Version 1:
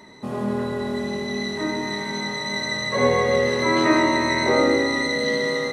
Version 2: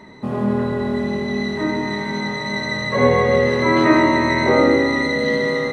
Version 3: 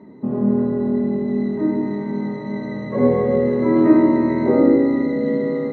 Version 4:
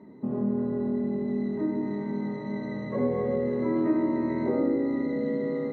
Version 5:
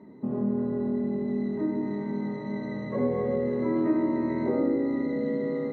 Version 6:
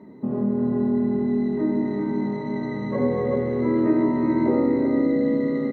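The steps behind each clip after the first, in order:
tone controls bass +4 dB, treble -10 dB; gain +3.5 dB
band-pass 270 Hz, Q 1.3; gain +4 dB
compressor 2:1, threshold -20 dBFS, peak gain reduction 7.5 dB; gain -6 dB
nothing audible
echo 0.386 s -5.5 dB; gain +4 dB

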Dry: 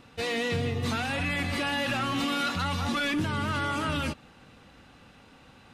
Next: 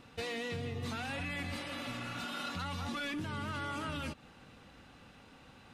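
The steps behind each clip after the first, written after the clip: compressor 5:1, threshold -33 dBFS, peak gain reduction 8 dB; spectral repair 1.57–2.44, 260–3100 Hz both; gain -3 dB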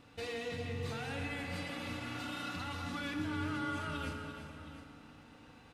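on a send: tapped delay 0.342/0.713 s -10/-14 dB; on the sum: FDN reverb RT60 2.9 s, low-frequency decay 1.3×, high-frequency decay 0.5×, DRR 2.5 dB; gain -4 dB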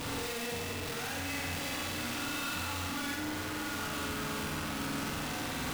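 infinite clipping; flutter echo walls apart 8 m, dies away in 0.85 s; gain +2 dB

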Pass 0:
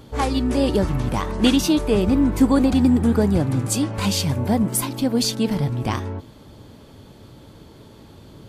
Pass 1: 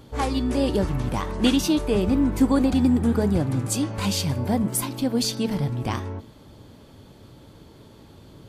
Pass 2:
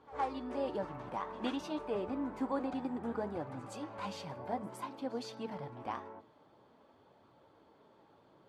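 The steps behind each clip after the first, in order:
de-hum 216.4 Hz, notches 30; gain -3 dB
band-pass 890 Hz, Q 1.1; flange 0.55 Hz, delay 0.7 ms, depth 6.4 ms, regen -56%; pre-echo 0.114 s -21 dB; gain -3 dB

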